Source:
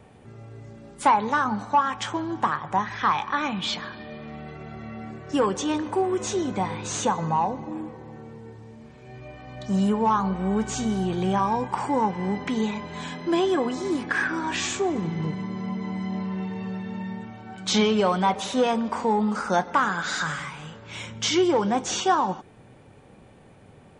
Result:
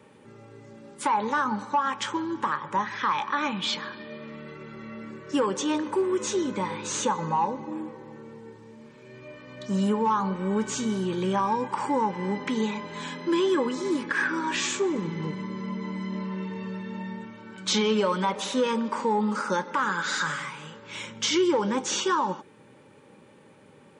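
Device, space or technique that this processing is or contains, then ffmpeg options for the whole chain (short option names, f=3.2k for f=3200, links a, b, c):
PA system with an anti-feedback notch: -af "highpass=190,asuperstop=centerf=700:order=20:qfactor=4.5,alimiter=limit=-15.5dB:level=0:latency=1:release=87"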